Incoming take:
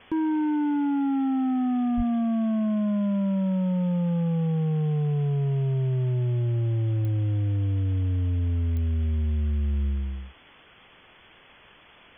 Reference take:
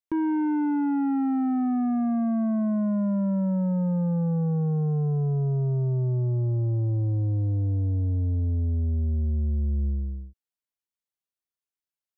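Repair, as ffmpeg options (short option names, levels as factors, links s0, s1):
-filter_complex "[0:a]adeclick=t=4,asplit=3[s0][s1][s2];[s0]afade=t=out:st=1.96:d=0.02[s3];[s1]highpass=f=140:w=0.5412,highpass=f=140:w=1.3066,afade=t=in:st=1.96:d=0.02,afade=t=out:st=2.08:d=0.02[s4];[s2]afade=t=in:st=2.08:d=0.02[s5];[s3][s4][s5]amix=inputs=3:normalize=0,afwtdn=0.005"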